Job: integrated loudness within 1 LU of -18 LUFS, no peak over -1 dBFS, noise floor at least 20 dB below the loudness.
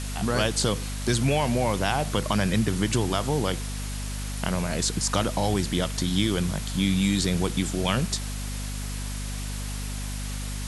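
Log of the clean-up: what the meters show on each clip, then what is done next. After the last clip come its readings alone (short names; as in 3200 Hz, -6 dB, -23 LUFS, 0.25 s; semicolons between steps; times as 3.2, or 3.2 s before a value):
hum 50 Hz; harmonics up to 250 Hz; hum level -30 dBFS; noise floor -32 dBFS; noise floor target -47 dBFS; loudness -26.5 LUFS; peak -7.0 dBFS; loudness target -18.0 LUFS
-> notches 50/100/150/200/250 Hz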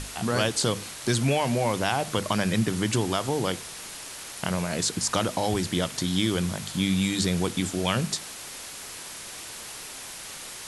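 hum none; noise floor -40 dBFS; noise floor target -48 dBFS
-> noise print and reduce 8 dB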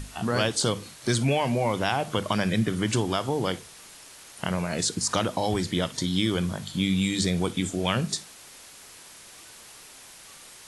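noise floor -48 dBFS; loudness -26.5 LUFS; peak -8.0 dBFS; loudness target -18.0 LUFS
-> gain +8.5 dB; limiter -1 dBFS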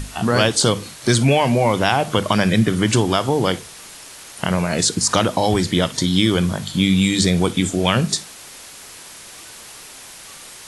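loudness -18.0 LUFS; peak -1.0 dBFS; noise floor -39 dBFS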